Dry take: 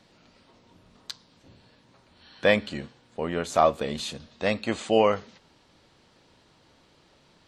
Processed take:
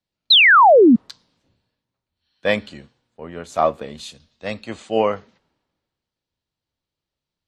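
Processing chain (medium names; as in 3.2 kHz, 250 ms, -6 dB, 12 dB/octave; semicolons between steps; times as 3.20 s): painted sound fall, 0.30–0.96 s, 210–4300 Hz -13 dBFS; three bands expanded up and down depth 70%; trim -2 dB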